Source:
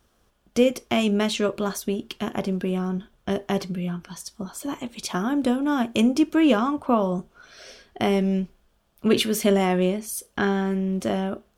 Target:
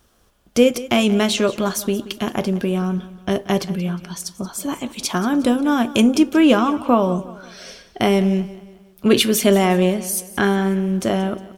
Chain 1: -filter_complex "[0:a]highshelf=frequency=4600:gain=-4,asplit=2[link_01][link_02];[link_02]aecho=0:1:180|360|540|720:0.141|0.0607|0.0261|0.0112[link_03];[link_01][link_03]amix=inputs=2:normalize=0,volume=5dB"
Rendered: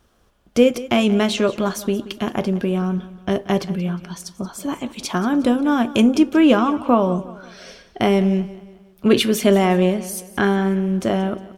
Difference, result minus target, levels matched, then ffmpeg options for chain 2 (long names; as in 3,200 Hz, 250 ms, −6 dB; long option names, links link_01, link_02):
8,000 Hz band −5.5 dB
-filter_complex "[0:a]highshelf=frequency=4600:gain=4,asplit=2[link_01][link_02];[link_02]aecho=0:1:180|360|540|720:0.141|0.0607|0.0261|0.0112[link_03];[link_01][link_03]amix=inputs=2:normalize=0,volume=5dB"